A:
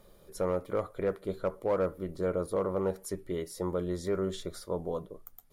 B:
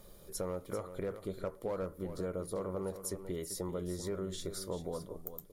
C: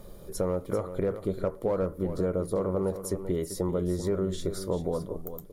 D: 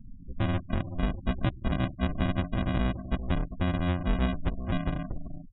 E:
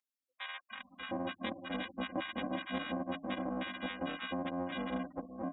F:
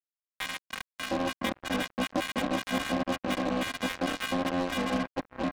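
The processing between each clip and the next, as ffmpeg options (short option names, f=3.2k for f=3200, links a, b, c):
-af "bass=f=250:g=3,treble=f=4k:g=7,acompressor=threshold=-37dB:ratio=3,aecho=1:1:390:0.282"
-af "tiltshelf=f=1.3k:g=4.5,volume=6dB"
-af "aecho=1:1:5.2:0.95,aresample=8000,acrusher=samples=18:mix=1:aa=0.000001,aresample=44100,afftfilt=real='re*gte(hypot(re,im),0.02)':imag='im*gte(hypot(re,im),0.02)':win_size=1024:overlap=0.75,volume=-2dB"
-filter_complex "[0:a]highpass=340,aecho=1:1:3.8:0.81,acrossover=split=1100[a][b];[a]adelay=710[c];[c][b]amix=inputs=2:normalize=0,volume=-3.5dB"
-filter_complex "[0:a]asplit=2[a][b];[b]acompressor=threshold=-46dB:ratio=12,volume=-2dB[c];[a][c]amix=inputs=2:normalize=0,acrusher=bits=5:mix=0:aa=0.5,volume=6dB"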